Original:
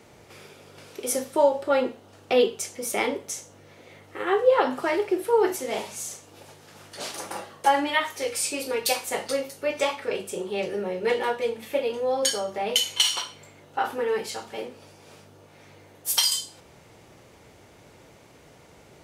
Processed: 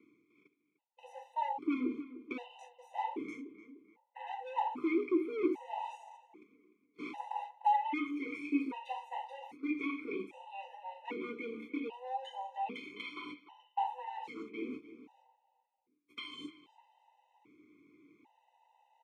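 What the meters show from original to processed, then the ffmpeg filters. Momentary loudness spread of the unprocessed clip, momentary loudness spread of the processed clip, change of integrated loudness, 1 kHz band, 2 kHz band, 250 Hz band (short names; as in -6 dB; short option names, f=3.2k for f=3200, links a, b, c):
14 LU, 17 LU, -12.5 dB, -8.0 dB, -13.5 dB, -3.5 dB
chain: -filter_complex "[0:a]acrossover=split=3000[a][b];[b]acompressor=threshold=-46dB:ratio=4:attack=1:release=60[c];[a][c]amix=inputs=2:normalize=0,agate=range=-45dB:threshold=-41dB:ratio=16:detection=peak,asoftclip=type=hard:threshold=-22.5dB,highpass=130,bandreject=f=4.8k:w=5.4,areverse,acompressor=mode=upward:threshold=-28dB:ratio=2.5,areverse,asplit=3[d][e][f];[d]bandpass=f=300:t=q:w=8,volume=0dB[g];[e]bandpass=f=870:t=q:w=8,volume=-6dB[h];[f]bandpass=f=2.24k:t=q:w=8,volume=-9dB[i];[g][h][i]amix=inputs=3:normalize=0,asplit=2[j][k];[k]adelay=300,lowpass=f=2.8k:p=1,volume=-14.5dB,asplit=2[l][m];[m]adelay=300,lowpass=f=2.8k:p=1,volume=0.4,asplit=2[n][o];[o]adelay=300,lowpass=f=2.8k:p=1,volume=0.4,asplit=2[p][q];[q]adelay=300,lowpass=f=2.8k:p=1,volume=0.4[r];[l][n][p][r]amix=inputs=4:normalize=0[s];[j][s]amix=inputs=2:normalize=0,afftfilt=real='re*gt(sin(2*PI*0.63*pts/sr)*(1-2*mod(floor(b*sr/1024/510),2)),0)':imag='im*gt(sin(2*PI*0.63*pts/sr)*(1-2*mod(floor(b*sr/1024/510),2)),0)':win_size=1024:overlap=0.75,volume=7.5dB"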